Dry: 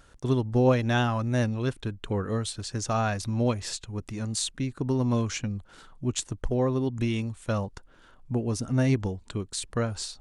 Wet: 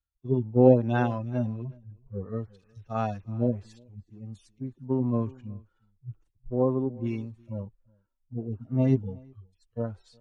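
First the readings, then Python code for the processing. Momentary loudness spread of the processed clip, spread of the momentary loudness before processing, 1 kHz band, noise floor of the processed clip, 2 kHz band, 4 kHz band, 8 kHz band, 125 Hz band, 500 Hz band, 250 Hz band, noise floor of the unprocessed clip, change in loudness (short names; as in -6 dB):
21 LU, 9 LU, -3.0 dB, -74 dBFS, -8.0 dB, under -20 dB, under -30 dB, -2.5 dB, +1.5 dB, -0.5 dB, -56 dBFS, +0.5 dB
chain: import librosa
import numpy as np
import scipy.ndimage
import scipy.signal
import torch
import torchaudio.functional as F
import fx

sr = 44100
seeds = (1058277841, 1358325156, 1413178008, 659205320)

y = fx.hpss_only(x, sr, part='harmonic')
y = fx.lowpass(y, sr, hz=1000.0, slope=6)
y = fx.low_shelf(y, sr, hz=110.0, db=-6.5)
y = y + 10.0 ** (-17.5 / 20.0) * np.pad(y, (int(371 * sr / 1000.0), 0))[:len(y)]
y = fx.band_widen(y, sr, depth_pct=100)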